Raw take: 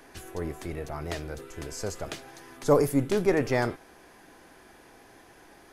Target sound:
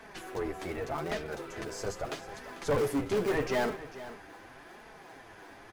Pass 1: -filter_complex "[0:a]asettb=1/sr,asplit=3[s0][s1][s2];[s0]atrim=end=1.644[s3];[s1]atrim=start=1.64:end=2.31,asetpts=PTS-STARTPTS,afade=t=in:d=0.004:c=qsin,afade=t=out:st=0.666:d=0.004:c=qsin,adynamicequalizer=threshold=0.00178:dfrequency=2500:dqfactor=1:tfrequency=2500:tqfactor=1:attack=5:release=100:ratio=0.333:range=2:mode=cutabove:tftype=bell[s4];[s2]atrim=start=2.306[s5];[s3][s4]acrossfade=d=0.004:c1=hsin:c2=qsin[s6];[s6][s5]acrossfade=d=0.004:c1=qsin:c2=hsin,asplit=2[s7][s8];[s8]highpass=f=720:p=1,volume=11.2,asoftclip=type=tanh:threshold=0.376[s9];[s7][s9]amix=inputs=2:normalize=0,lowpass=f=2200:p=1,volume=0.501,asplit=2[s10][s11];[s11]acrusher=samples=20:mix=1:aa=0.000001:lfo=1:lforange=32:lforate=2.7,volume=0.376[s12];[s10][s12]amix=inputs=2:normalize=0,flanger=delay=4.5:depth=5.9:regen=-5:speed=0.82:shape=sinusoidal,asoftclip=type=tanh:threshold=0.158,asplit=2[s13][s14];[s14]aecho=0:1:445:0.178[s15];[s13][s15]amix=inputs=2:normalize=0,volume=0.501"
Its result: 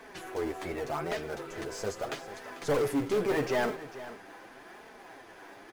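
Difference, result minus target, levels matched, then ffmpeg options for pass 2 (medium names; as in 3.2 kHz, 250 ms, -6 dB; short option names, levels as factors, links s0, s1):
decimation with a swept rate: distortion -15 dB
-filter_complex "[0:a]asettb=1/sr,asplit=3[s0][s1][s2];[s0]atrim=end=1.644[s3];[s1]atrim=start=1.64:end=2.31,asetpts=PTS-STARTPTS,afade=t=in:d=0.004:c=qsin,afade=t=out:st=0.666:d=0.004:c=qsin,adynamicequalizer=threshold=0.00178:dfrequency=2500:dqfactor=1:tfrequency=2500:tqfactor=1:attack=5:release=100:ratio=0.333:range=2:mode=cutabove:tftype=bell[s4];[s2]atrim=start=2.306[s5];[s3][s4]acrossfade=d=0.004:c1=hsin:c2=qsin[s6];[s6][s5]acrossfade=d=0.004:c1=qsin:c2=hsin,asplit=2[s7][s8];[s8]highpass=f=720:p=1,volume=11.2,asoftclip=type=tanh:threshold=0.376[s9];[s7][s9]amix=inputs=2:normalize=0,lowpass=f=2200:p=1,volume=0.501,asplit=2[s10][s11];[s11]acrusher=samples=68:mix=1:aa=0.000001:lfo=1:lforange=109:lforate=2.7,volume=0.376[s12];[s10][s12]amix=inputs=2:normalize=0,flanger=delay=4.5:depth=5.9:regen=-5:speed=0.82:shape=sinusoidal,asoftclip=type=tanh:threshold=0.158,asplit=2[s13][s14];[s14]aecho=0:1:445:0.178[s15];[s13][s15]amix=inputs=2:normalize=0,volume=0.501"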